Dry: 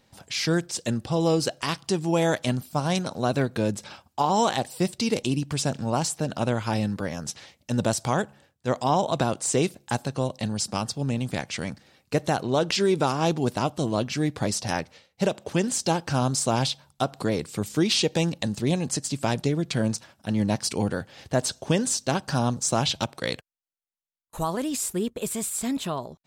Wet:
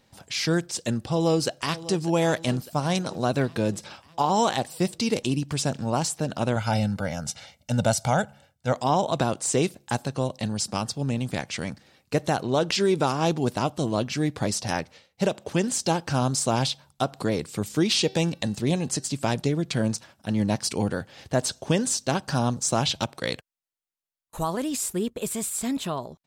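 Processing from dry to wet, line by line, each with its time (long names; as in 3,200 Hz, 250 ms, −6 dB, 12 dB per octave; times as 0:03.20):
0:01.03–0:02.01: delay throw 600 ms, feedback 60%, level −16 dB
0:06.56–0:08.73: comb filter 1.4 ms
0:17.87–0:19.06: hum removal 384.4 Hz, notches 15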